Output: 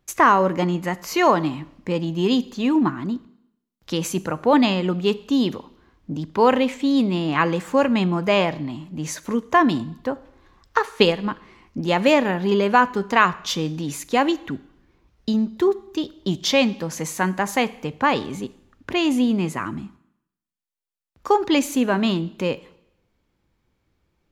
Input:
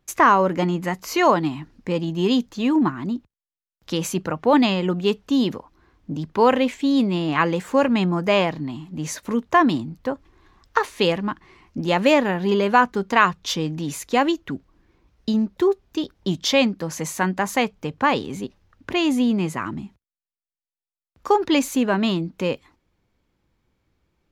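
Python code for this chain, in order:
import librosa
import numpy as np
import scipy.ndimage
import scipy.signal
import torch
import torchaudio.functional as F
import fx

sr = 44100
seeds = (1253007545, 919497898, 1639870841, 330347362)

y = fx.transient(x, sr, attack_db=6, sustain_db=-5, at=(10.78, 11.27))
y = fx.rev_schroeder(y, sr, rt60_s=0.76, comb_ms=28, drr_db=17.5)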